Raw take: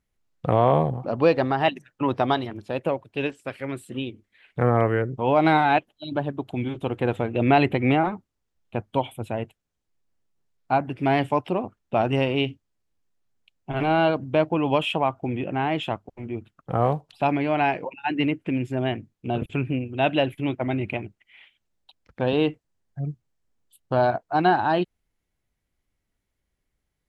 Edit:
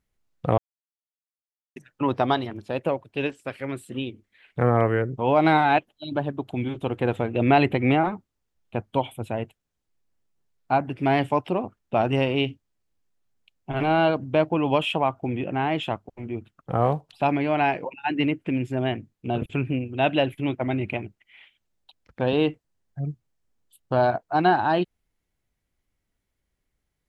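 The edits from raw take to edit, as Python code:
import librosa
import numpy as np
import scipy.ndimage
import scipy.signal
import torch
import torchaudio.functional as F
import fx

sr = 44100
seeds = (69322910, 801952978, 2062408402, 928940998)

y = fx.edit(x, sr, fx.silence(start_s=0.58, length_s=1.18), tone=tone)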